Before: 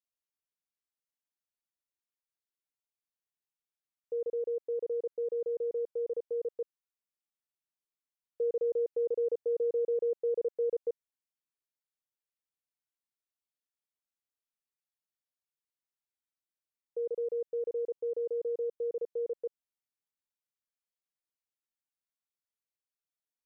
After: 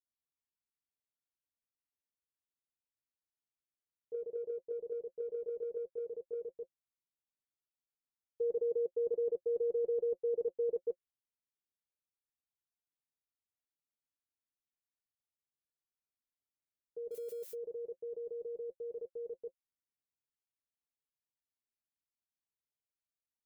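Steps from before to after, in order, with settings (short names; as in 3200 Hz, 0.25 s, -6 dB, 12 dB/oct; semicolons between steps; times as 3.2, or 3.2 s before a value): 17.11–17.54 switching spikes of -36.5 dBFS; low shelf 450 Hz +11.5 dB; notch 520 Hz, Q 12; level quantiser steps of 9 dB; notch comb 180 Hz; gain -5 dB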